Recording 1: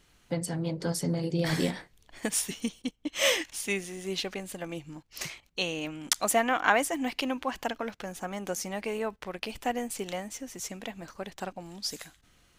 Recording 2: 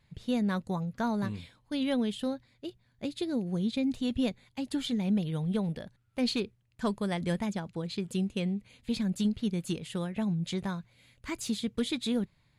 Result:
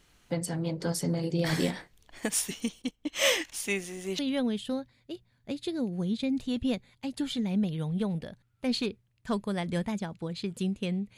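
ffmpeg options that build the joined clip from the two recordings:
-filter_complex "[0:a]apad=whole_dur=11.17,atrim=end=11.17,atrim=end=4.192[a];[1:a]atrim=start=1.728:end=8.71[b];[a][b]acrossfade=d=0.004:c1=hsin:c2=hsin"

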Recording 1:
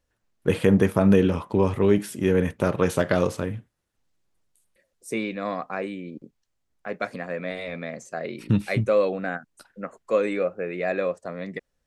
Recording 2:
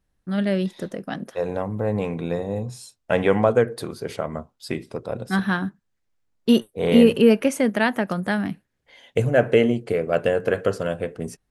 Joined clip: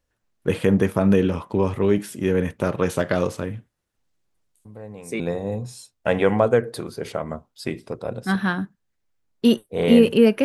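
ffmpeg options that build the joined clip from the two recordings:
-filter_complex "[1:a]asplit=2[a][b];[0:a]apad=whole_dur=10.44,atrim=end=10.44,atrim=end=5.202[c];[b]atrim=start=2.238:end=7.48[d];[a]atrim=start=1.69:end=2.24,asetpts=PTS-STARTPTS,volume=-14.5dB,afade=t=in:d=0.004:c=hsin,afade=t=out:st=0.546:d=0.004:c=hsin,adelay=205065S[e];[c][d]acrossfade=d=0.004:c1=hsin:c2=hsin[f];[f][e]amix=inputs=2:normalize=0"

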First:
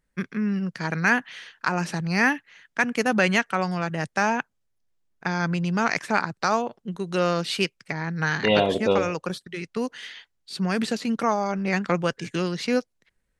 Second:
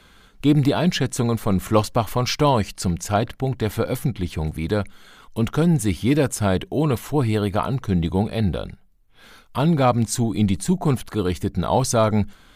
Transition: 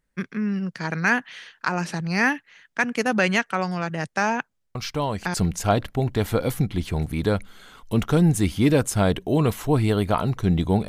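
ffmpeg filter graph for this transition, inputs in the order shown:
-filter_complex "[1:a]asplit=2[a][b];[0:a]apad=whole_dur=10.88,atrim=end=10.88,atrim=end=5.342[c];[b]atrim=start=2.788:end=8.33[d];[a]atrim=start=2.2:end=2.79,asetpts=PTS-STARTPTS,volume=-8dB,afade=t=in:d=0.004:c=hsin,afade=t=out:st=0.586:d=0.004:c=hsin,adelay=4750[e];[c][d]acrossfade=d=0.004:c1=hsin:c2=hsin[f];[f][e]amix=inputs=2:normalize=0"

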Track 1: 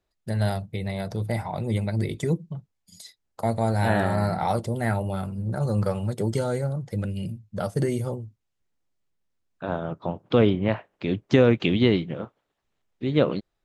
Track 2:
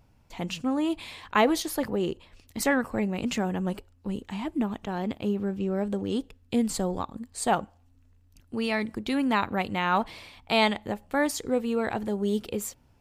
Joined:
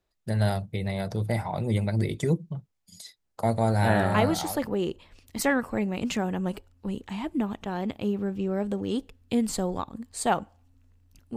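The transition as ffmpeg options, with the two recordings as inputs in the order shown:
-filter_complex "[0:a]apad=whole_dur=11.36,atrim=end=11.36,atrim=end=4.63,asetpts=PTS-STARTPTS[a];[1:a]atrim=start=1.06:end=8.57,asetpts=PTS-STARTPTS[b];[a][b]acrossfade=d=0.78:c1=qsin:c2=qsin"

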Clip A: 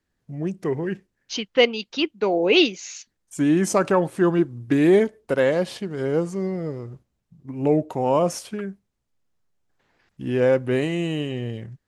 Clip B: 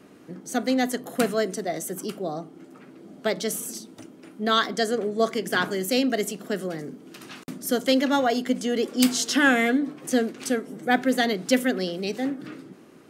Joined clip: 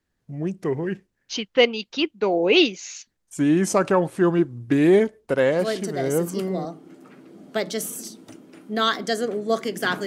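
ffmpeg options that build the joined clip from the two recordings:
-filter_complex "[0:a]apad=whole_dur=10.06,atrim=end=10.06,atrim=end=6.65,asetpts=PTS-STARTPTS[a];[1:a]atrim=start=1.29:end=5.76,asetpts=PTS-STARTPTS[b];[a][b]acrossfade=d=1.06:c1=log:c2=log"

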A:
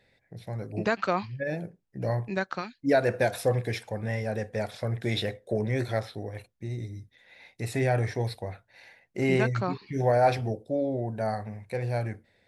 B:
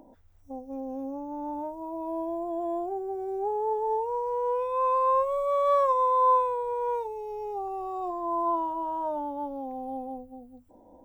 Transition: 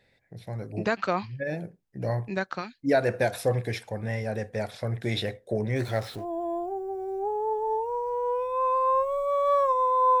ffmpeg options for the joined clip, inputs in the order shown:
-filter_complex "[0:a]asettb=1/sr,asplit=3[a][b][c];[a]atrim=end=5.764[d];[b]atrim=start=5.76:end=6.26,asetpts=PTS-STARTPTS,afade=t=in:d=0.004:c=qsin,afade=t=out:st=0.496:d=0.004:c=qsin,aeval=exprs='val(0)+0.5*0.00841*sgn(val(0))':c=same[e];[c]atrim=start=6.256[f];[d][e]acrossfade=d=0.004:c1=hsin:c2=qsin[g];[g][f]acrossfade=d=0.004:c1=qsin:c2=hsin,apad=whole_dur=10.2,atrim=end=10.2,atrim=end=6.26,asetpts=PTS-STARTPTS[h];[1:a]atrim=start=2.36:end=6.4,asetpts=PTS-STARTPTS[i];[h][i]acrossfade=d=0.1:c1=tri:c2=tri"

